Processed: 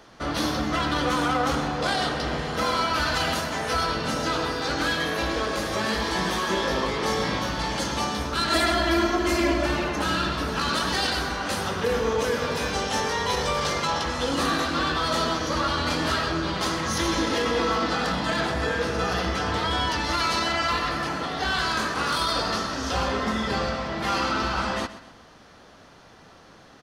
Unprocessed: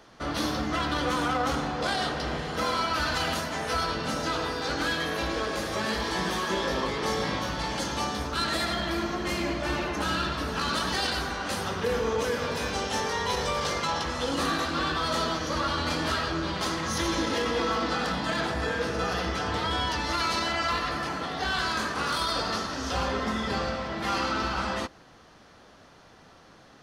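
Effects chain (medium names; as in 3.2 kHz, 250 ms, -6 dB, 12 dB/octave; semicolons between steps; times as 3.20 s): 8.50–9.66 s: comb 3 ms, depth 95%; feedback delay 129 ms, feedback 40%, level -15 dB; trim +3 dB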